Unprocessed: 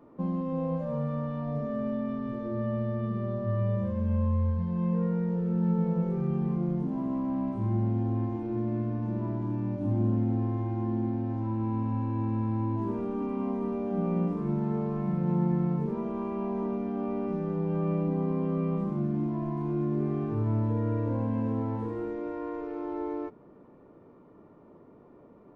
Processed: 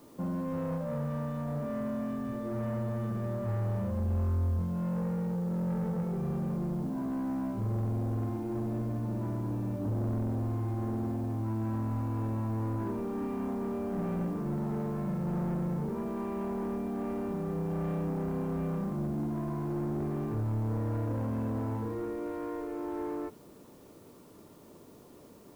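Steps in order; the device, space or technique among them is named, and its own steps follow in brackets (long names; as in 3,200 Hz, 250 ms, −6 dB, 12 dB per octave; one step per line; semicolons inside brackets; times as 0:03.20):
open-reel tape (soft clipping −29 dBFS, distortion −11 dB; parametric band 80 Hz +4 dB; white noise bed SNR 32 dB)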